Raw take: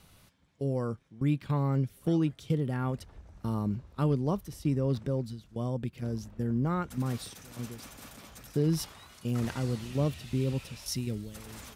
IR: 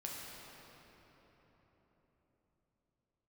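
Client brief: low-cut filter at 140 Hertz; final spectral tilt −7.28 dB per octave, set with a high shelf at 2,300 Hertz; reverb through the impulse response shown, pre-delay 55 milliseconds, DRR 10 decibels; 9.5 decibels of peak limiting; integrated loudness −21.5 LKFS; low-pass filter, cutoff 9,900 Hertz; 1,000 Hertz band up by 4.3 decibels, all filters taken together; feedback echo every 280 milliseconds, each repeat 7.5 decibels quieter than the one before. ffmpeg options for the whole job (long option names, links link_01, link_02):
-filter_complex "[0:a]highpass=140,lowpass=9900,equalizer=frequency=1000:width_type=o:gain=7,highshelf=frequency=2300:gain=-8.5,alimiter=level_in=1.5dB:limit=-24dB:level=0:latency=1,volume=-1.5dB,aecho=1:1:280|560|840|1120|1400:0.422|0.177|0.0744|0.0312|0.0131,asplit=2[link_01][link_02];[1:a]atrim=start_sample=2205,adelay=55[link_03];[link_02][link_03]afir=irnorm=-1:irlink=0,volume=-10dB[link_04];[link_01][link_04]amix=inputs=2:normalize=0,volume=14.5dB"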